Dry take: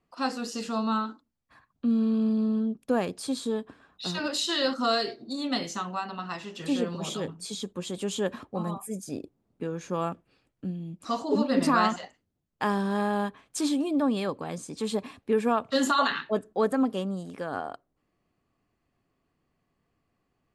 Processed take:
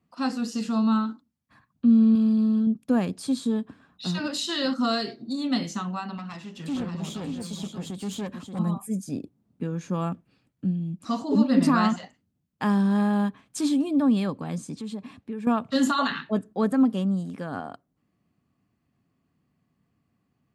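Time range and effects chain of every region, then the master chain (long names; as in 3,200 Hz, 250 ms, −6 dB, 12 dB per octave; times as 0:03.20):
0:02.15–0:02.67: spectral tilt +1.5 dB per octave + one half of a high-frequency compander encoder only
0:06.17–0:08.59: single-tap delay 581 ms −7 dB + tube saturation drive 29 dB, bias 0.6
0:14.75–0:15.47: high-shelf EQ 7,600 Hz −6.5 dB + downward compressor 2 to 1, threshold −42 dBFS
whole clip: high-pass filter 83 Hz; low shelf with overshoot 300 Hz +7 dB, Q 1.5; level −1 dB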